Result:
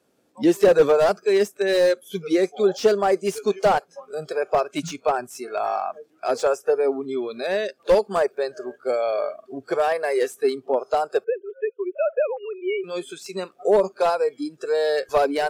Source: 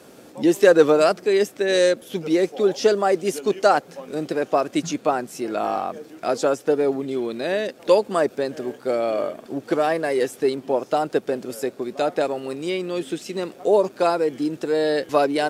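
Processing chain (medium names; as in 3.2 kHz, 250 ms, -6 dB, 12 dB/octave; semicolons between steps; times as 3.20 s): 11.24–12.84 s: formants replaced by sine waves; spectral noise reduction 20 dB; slew-rate limiter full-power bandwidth 160 Hz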